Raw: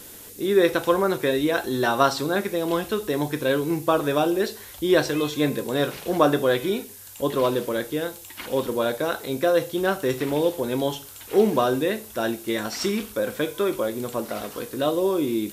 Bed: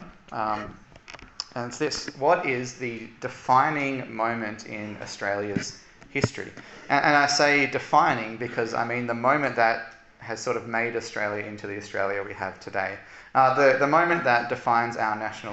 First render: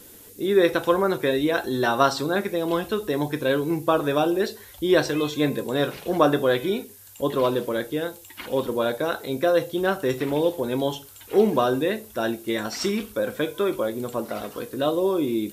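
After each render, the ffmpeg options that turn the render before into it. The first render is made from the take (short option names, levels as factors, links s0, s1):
-af "afftdn=nr=6:nf=-43"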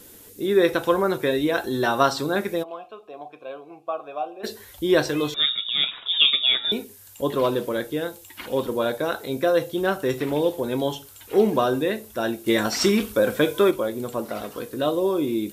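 -filter_complex "[0:a]asplit=3[s0][s1][s2];[s0]afade=t=out:st=2.62:d=0.02[s3];[s1]asplit=3[s4][s5][s6];[s4]bandpass=f=730:t=q:w=8,volume=1[s7];[s5]bandpass=f=1090:t=q:w=8,volume=0.501[s8];[s6]bandpass=f=2440:t=q:w=8,volume=0.355[s9];[s7][s8][s9]amix=inputs=3:normalize=0,afade=t=in:st=2.62:d=0.02,afade=t=out:st=4.43:d=0.02[s10];[s2]afade=t=in:st=4.43:d=0.02[s11];[s3][s10][s11]amix=inputs=3:normalize=0,asettb=1/sr,asplit=3[s12][s13][s14];[s12]atrim=end=5.344[s15];[s13]atrim=start=5.34:end=6.72,asetpts=PTS-STARTPTS,afade=t=in:d=0.004:c=qsin,afade=t=out:st=1.376:d=0.004:c=qsin,lowpass=f=3300:t=q:w=0.5098,lowpass=f=3300:t=q:w=0.6013,lowpass=f=3300:t=q:w=0.9,lowpass=f=3300:t=q:w=2.563,afreqshift=-3900[s16];[s14]atrim=start=6.716[s17];[s15][s16]acrossfade=d=0.004:c1=hsin:c2=qsin[s18];[s18][s17]acrossfade=d=0.004:c1=qsin:c2=hsin,asettb=1/sr,asplit=3[s19][s20][s21];[s19]atrim=end=12.464[s22];[s20]atrim=start=12.46:end=13.71,asetpts=PTS-STARTPTS,afade=t=in:d=0.004:c=qsin,afade=t=out:st=1.246:d=0.004:c=qsin,acontrast=43[s23];[s21]atrim=start=13.706[s24];[s22][s23]acrossfade=d=0.004:c1=hsin:c2=qsin[s25];[s25][s24]acrossfade=d=0.004:c1=qsin:c2=hsin"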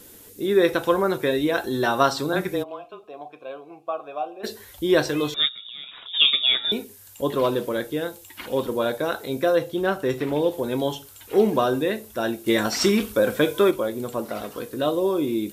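-filter_complex "[0:a]asettb=1/sr,asplit=3[s0][s1][s2];[s0]atrim=end=2.334[s3];[s1]atrim=start=2.33:end=3.04,asetpts=PTS-STARTPTS,afade=t=in:d=0.004:c=qsin,afade=t=out:st=0.706:d=0.004:c=qsin,afreqshift=-25[s4];[s2]atrim=start=3.036[s5];[s3][s4]acrossfade=d=0.004:c1=hsin:c2=qsin[s6];[s6][s5]acrossfade=d=0.004:c1=qsin:c2=hsin,asplit=3[s7][s8][s9];[s7]afade=t=out:st=5.47:d=0.02[s10];[s8]acompressor=threshold=0.0141:ratio=4:attack=3.2:release=140:knee=1:detection=peak,afade=t=in:st=5.47:d=0.02,afade=t=out:st=6.13:d=0.02[s11];[s9]afade=t=in:st=6.13:d=0.02[s12];[s10][s11][s12]amix=inputs=3:normalize=0,asettb=1/sr,asplit=3[s13][s14][s15];[s13]atrim=end=9.554[s16];[s14]atrim=start=9.55:end=10.52,asetpts=PTS-STARTPTS,afade=t=in:d=0.004:c=qsin,afade=t=out:st=0.966:d=0.004:c=qsin,highshelf=f=4600:g=-5[s17];[s15]atrim=start=10.516[s18];[s16][s17]acrossfade=d=0.004:c1=hsin:c2=qsin[s19];[s19][s18]acrossfade=d=0.004:c1=qsin:c2=hsin"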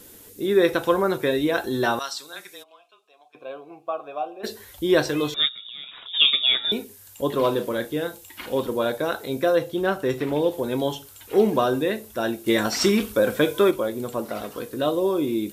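-filter_complex "[0:a]asettb=1/sr,asplit=3[s0][s1][s2];[s0]atrim=end=1.994[s3];[s1]atrim=start=1.99:end=3.35,asetpts=PTS-STARTPTS,afade=t=in:d=0.004:c=qsin,afade=t=out:st=1.356:d=0.004:c=qsin,bandpass=f=7200:t=q:w=0.65[s4];[s2]atrim=start=3.346[s5];[s3][s4]acrossfade=d=0.004:c1=hsin:c2=qsin[s6];[s6][s5]acrossfade=d=0.004:c1=qsin:c2=hsin,asettb=1/sr,asplit=3[s7][s8][s9];[s7]atrim=end=7.354[s10];[s8]atrim=start=7.35:end=8.59,asetpts=PTS-STARTPTS,afade=t=in:d=0.004:c=qsin,afade=t=out:st=1.236:d=0.004:c=qsin,asplit=2[s11][s12];[s12]adelay=34,volume=0.282[s13];[s11][s13]amix=inputs=2:normalize=0,atrim=end_sample=54684[s14];[s9]atrim=start=8.586[s15];[s10][s14]acrossfade=d=0.004:c1=hsin:c2=qsin[s16];[s16][s15]acrossfade=d=0.004:c1=qsin:c2=hsin"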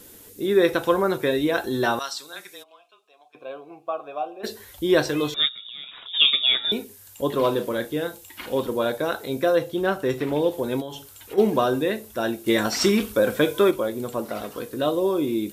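-filter_complex "[0:a]asplit=3[s0][s1][s2];[s0]afade=t=out:st=10.8:d=0.02[s3];[s1]acompressor=threshold=0.0282:ratio=4:attack=3.2:release=140:knee=1:detection=peak,afade=t=in:st=10.8:d=0.02,afade=t=out:st=11.37:d=0.02[s4];[s2]afade=t=in:st=11.37:d=0.02[s5];[s3][s4][s5]amix=inputs=3:normalize=0"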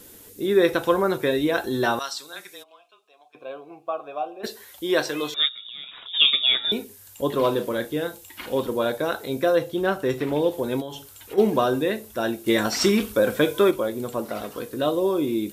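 -filter_complex "[0:a]asettb=1/sr,asplit=3[s0][s1][s2];[s0]atrim=end=4.464[s3];[s1]atrim=start=4.46:end=5.6,asetpts=PTS-STARTPTS,afade=t=in:d=0.004:c=qsin,afade=t=out:st=1.136:d=0.004:c=qsin,highpass=f=460:p=1[s4];[s2]atrim=start=5.596[s5];[s3][s4]acrossfade=d=0.004:c1=hsin:c2=qsin[s6];[s6][s5]acrossfade=d=0.004:c1=qsin:c2=hsin"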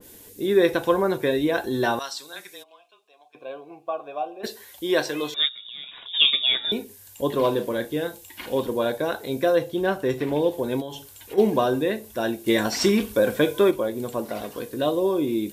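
-af "bandreject=f=1300:w=6.6,adynamicequalizer=threshold=0.02:dfrequency=2000:dqfactor=0.7:tfrequency=2000:tqfactor=0.7:attack=5:release=100:ratio=0.375:range=1.5:mode=cutabove:tftype=highshelf"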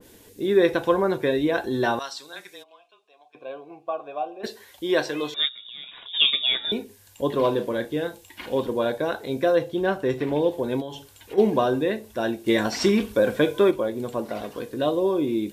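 -af "highshelf=f=8300:g=-11.5"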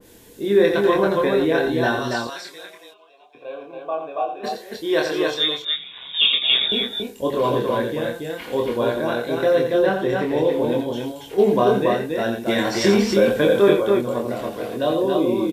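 -filter_complex "[0:a]asplit=2[s0][s1];[s1]adelay=25,volume=0.708[s2];[s0][s2]amix=inputs=2:normalize=0,aecho=1:1:87.46|279.9:0.447|0.708"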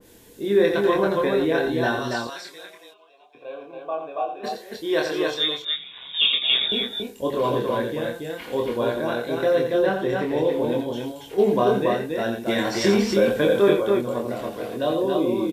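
-af "volume=0.75"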